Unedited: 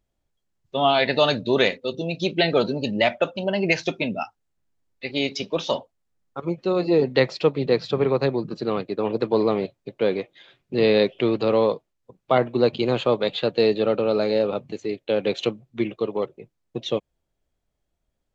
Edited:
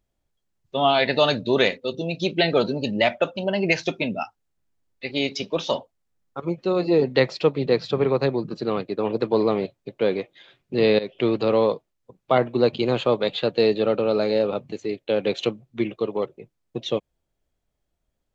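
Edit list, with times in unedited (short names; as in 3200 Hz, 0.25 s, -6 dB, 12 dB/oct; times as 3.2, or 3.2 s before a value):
10.99–11.24 fade in, from -18 dB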